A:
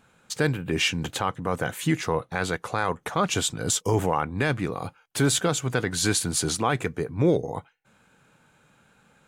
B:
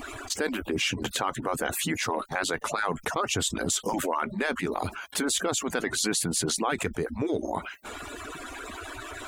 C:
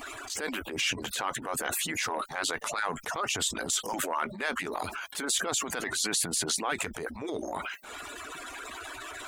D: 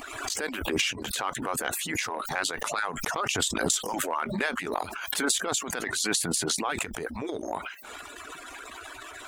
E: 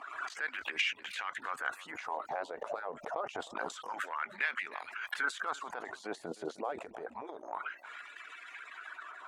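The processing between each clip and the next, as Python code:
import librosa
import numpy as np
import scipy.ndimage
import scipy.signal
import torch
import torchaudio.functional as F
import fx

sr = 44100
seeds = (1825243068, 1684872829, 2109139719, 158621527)

y1 = fx.hpss_only(x, sr, part='percussive')
y1 = fx.env_flatten(y1, sr, amount_pct=70)
y1 = y1 * 10.0 ** (-4.5 / 20.0)
y2 = fx.transient(y1, sr, attack_db=-8, sustain_db=6)
y2 = fx.low_shelf(y2, sr, hz=410.0, db=-10.5)
y3 = fx.transient(y2, sr, attack_db=11, sustain_db=-6)
y3 = fx.pre_swell(y3, sr, db_per_s=46.0)
y3 = y3 * 10.0 ** (-2.5 / 20.0)
y4 = fx.wah_lfo(y3, sr, hz=0.27, low_hz=550.0, high_hz=2100.0, q=2.4)
y4 = y4 + 10.0 ** (-19.0 / 20.0) * np.pad(y4, (int(309 * sr / 1000.0), 0))[:len(y4)]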